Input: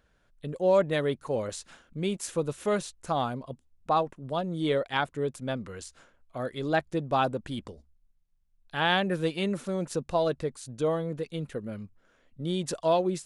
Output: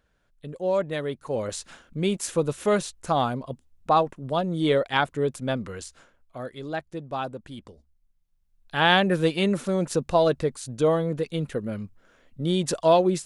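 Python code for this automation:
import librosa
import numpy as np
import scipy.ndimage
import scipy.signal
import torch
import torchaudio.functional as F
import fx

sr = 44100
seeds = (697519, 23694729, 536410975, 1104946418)

y = fx.gain(x, sr, db=fx.line((1.13, -2.0), (1.57, 5.0), (5.69, 5.0), (6.75, -5.0), (7.58, -5.0), (8.86, 6.0)))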